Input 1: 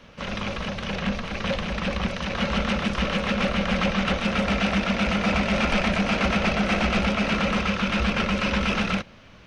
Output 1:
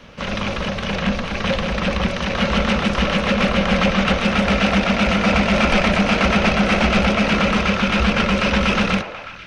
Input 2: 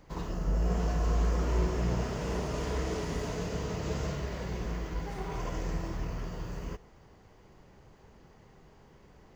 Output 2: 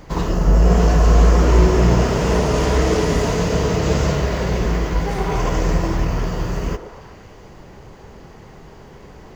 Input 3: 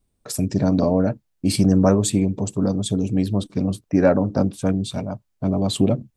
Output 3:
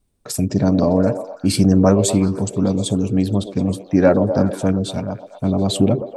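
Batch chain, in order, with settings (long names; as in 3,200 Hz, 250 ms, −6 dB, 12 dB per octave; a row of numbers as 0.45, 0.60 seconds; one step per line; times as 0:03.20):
pitch vibrato 11 Hz 20 cents
echo through a band-pass that steps 122 ms, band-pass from 450 Hz, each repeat 0.7 octaves, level −6 dB
loudness normalisation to −18 LKFS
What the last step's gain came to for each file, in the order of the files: +6.0, +15.5, +2.5 decibels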